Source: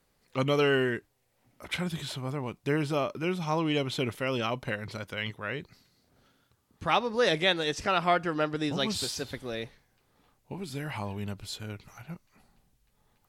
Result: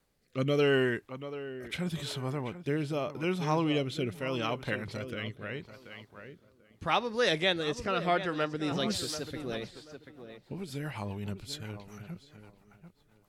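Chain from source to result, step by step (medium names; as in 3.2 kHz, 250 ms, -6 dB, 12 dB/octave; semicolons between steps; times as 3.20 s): tape echo 736 ms, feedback 26%, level -10 dB, low-pass 2.1 kHz; rotary cabinet horn 0.8 Hz, later 7.5 Hz, at 8.27 s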